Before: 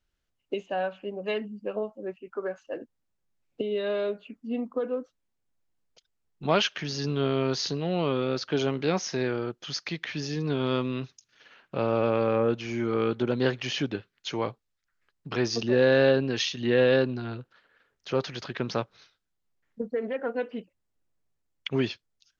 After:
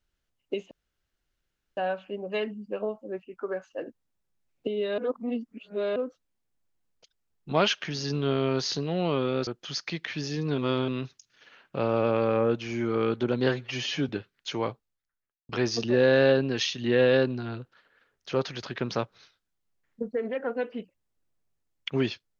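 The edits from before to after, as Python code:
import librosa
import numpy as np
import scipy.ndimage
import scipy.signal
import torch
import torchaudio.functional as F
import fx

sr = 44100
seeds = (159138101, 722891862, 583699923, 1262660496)

y = fx.studio_fade_out(x, sr, start_s=14.43, length_s=0.85)
y = fx.edit(y, sr, fx.insert_room_tone(at_s=0.71, length_s=1.06),
    fx.reverse_span(start_s=3.92, length_s=0.98),
    fx.cut(start_s=8.41, length_s=1.05),
    fx.reverse_span(start_s=10.57, length_s=0.3),
    fx.stretch_span(start_s=13.48, length_s=0.4, factor=1.5), tone=tone)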